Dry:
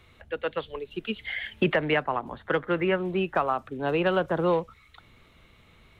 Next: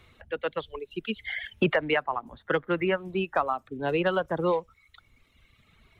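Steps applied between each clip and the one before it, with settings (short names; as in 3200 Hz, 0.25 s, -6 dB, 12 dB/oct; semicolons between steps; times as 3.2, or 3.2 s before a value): reverb removal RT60 1.7 s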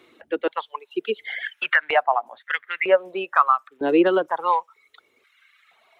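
stepped high-pass 2.1 Hz 320–2000 Hz; gain +2 dB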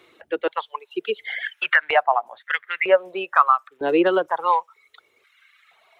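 bell 250 Hz -9 dB 0.66 oct; gain +1.5 dB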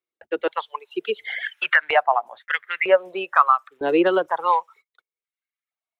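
gate -46 dBFS, range -40 dB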